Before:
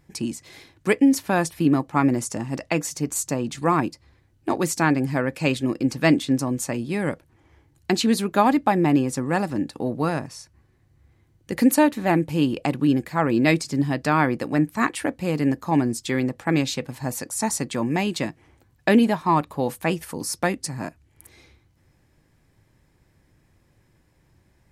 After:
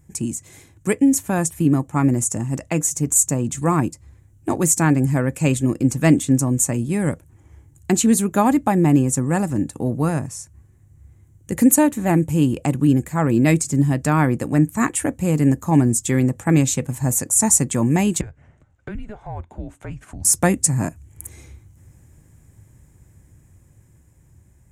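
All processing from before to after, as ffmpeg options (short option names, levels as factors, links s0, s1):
-filter_complex "[0:a]asettb=1/sr,asplit=3[s0][s1][s2];[s0]atrim=end=18.214[s3];[s1]atrim=start=18.21:end=20.25,asetpts=PTS-STARTPTS,afade=t=in:d=0.004:c=qsin,afade=t=out:st=2.036:d=0.004:c=qsin,highpass=270,lowpass=3100,acompressor=threshold=0.00398:ratio=2:attack=3.2:release=140:knee=1:detection=peak,afreqshift=-210[s4];[s2]atrim=start=20.246[s5];[s3][s4]acrossfade=d=0.004:c1=hsin:c2=qsin[s6];[s6][s5]acrossfade=d=0.004:c1=qsin:c2=hsin,equalizer=f=81:w=0.5:g=13,dynaudnorm=f=850:g=7:m=3.76,highshelf=f=5800:t=q:w=3:g=8,volume=0.708"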